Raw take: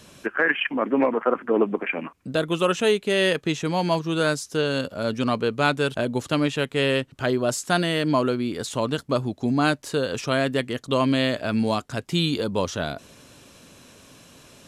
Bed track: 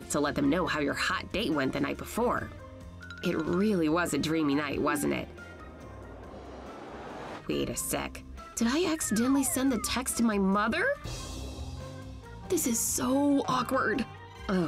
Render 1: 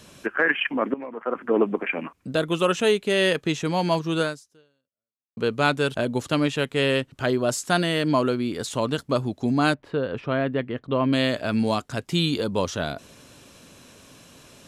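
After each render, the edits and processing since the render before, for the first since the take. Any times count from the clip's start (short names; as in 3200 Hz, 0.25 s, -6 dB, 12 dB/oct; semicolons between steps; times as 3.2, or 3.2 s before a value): 0.94–1.47 fade in quadratic, from -17 dB; 4.21–5.37 fade out exponential; 9.74–11.13 air absorption 470 m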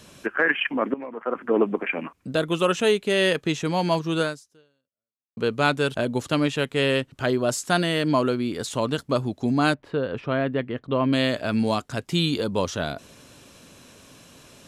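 nothing audible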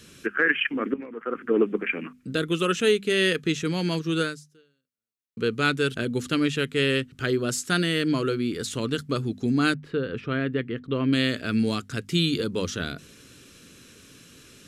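band shelf 770 Hz -12.5 dB 1.1 oct; notches 50/100/150/200/250 Hz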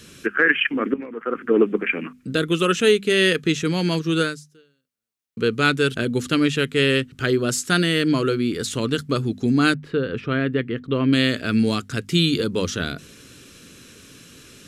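gain +4.5 dB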